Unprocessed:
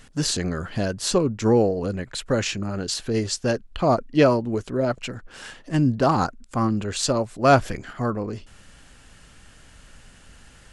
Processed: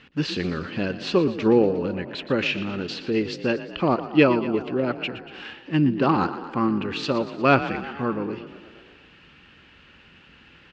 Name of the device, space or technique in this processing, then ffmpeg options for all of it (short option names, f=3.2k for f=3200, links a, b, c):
frequency-shifting delay pedal into a guitar cabinet: -filter_complex "[0:a]asplit=8[a][b][c][d][e][f][g][h];[b]adelay=118,afreqshift=35,volume=-13.5dB[i];[c]adelay=236,afreqshift=70,volume=-17.4dB[j];[d]adelay=354,afreqshift=105,volume=-21.3dB[k];[e]adelay=472,afreqshift=140,volume=-25.1dB[l];[f]adelay=590,afreqshift=175,volume=-29dB[m];[g]adelay=708,afreqshift=210,volume=-32.9dB[n];[h]adelay=826,afreqshift=245,volume=-36.8dB[o];[a][i][j][k][l][m][n][o]amix=inputs=8:normalize=0,highpass=96,equalizer=f=110:t=q:w=4:g=-8,equalizer=f=340:t=q:w=4:g=4,equalizer=f=660:t=q:w=4:g=-8,equalizer=f=2.6k:t=q:w=4:g=8,lowpass=f=3.9k:w=0.5412,lowpass=f=3.9k:w=1.3066"